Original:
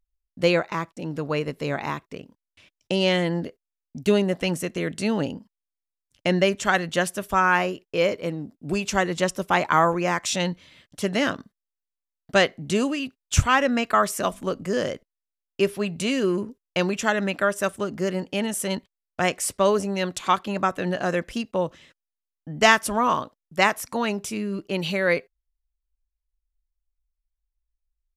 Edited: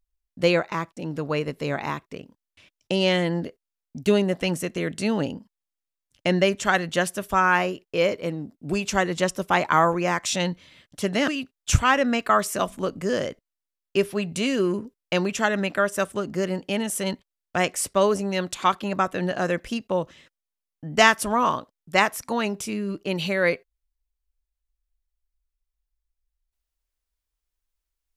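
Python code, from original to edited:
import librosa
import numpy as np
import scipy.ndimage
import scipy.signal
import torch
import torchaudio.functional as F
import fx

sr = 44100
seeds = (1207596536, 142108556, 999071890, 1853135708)

y = fx.edit(x, sr, fx.cut(start_s=11.28, length_s=1.64), tone=tone)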